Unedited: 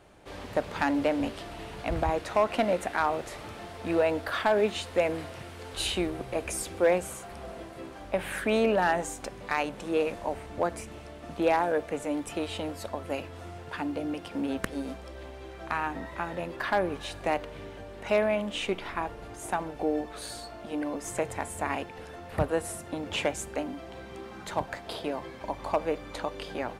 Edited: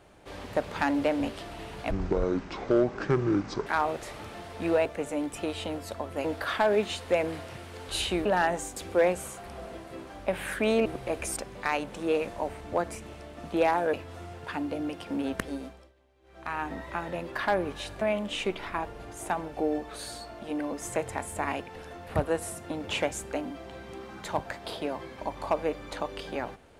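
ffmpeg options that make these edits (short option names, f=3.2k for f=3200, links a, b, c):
-filter_complex "[0:a]asplit=13[a][b][c][d][e][f][g][h][i][j][k][l][m];[a]atrim=end=1.914[n];[b]atrim=start=1.91:end=2.91,asetpts=PTS-STARTPTS,asetrate=25137,aresample=44100,atrim=end_sample=77368,asetpts=PTS-STARTPTS[o];[c]atrim=start=2.906:end=4.102[p];[d]atrim=start=11.788:end=13.182[q];[e]atrim=start=4.098:end=6.112[r];[f]atrim=start=8.708:end=9.222[s];[g]atrim=start=6.618:end=8.712[t];[h]atrim=start=6.108:end=6.622[u];[i]atrim=start=9.218:end=11.792[v];[j]atrim=start=13.178:end=15.18,asetpts=PTS-STARTPTS,afade=t=out:st=1.532:d=0.47:silence=0.0707946[w];[k]atrim=start=15.18:end=15.46,asetpts=PTS-STARTPTS,volume=-23dB[x];[l]atrim=start=15.46:end=17.262,asetpts=PTS-STARTPTS,afade=t=in:d=0.47:silence=0.0707946[y];[m]atrim=start=18.238[z];[n][o]acrossfade=d=0.004:c1=hsin:c2=hsin[aa];[aa][p]acrossfade=d=0.004:c1=hsin:c2=hsin[ab];[ab][q]acrossfade=d=0.004:c1=hsin:c2=hsin[ac];[ac][r]acrossfade=d=0.004:c1=hsin:c2=hsin[ad];[ad][s]acrossfade=d=0.004:c1=hsin:c2=hsin[ae];[ae][t]acrossfade=d=0.004:c1=hsin:c2=hsin[af];[af][u]acrossfade=d=0.004:c1=hsin:c2=hsin[ag];[ag][v]acrossfade=d=0.004:c1=hsin:c2=hsin[ah];[w][x][y]concat=n=3:v=0:a=1[ai];[ah][ai]acrossfade=d=0.004:c1=hsin:c2=hsin[aj];[aj][z]acrossfade=d=0.004:c1=hsin:c2=hsin"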